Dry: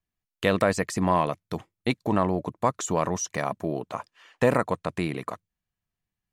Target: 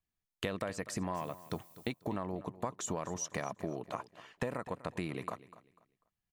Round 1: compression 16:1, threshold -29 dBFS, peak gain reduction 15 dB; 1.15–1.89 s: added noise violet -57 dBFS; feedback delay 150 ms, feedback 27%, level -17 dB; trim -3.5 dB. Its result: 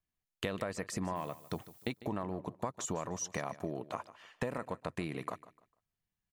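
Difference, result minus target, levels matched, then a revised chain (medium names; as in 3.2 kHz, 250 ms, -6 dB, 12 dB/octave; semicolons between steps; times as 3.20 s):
echo 97 ms early
compression 16:1, threshold -29 dBFS, peak gain reduction 15 dB; 1.15–1.89 s: added noise violet -57 dBFS; feedback delay 247 ms, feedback 27%, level -17 dB; trim -3.5 dB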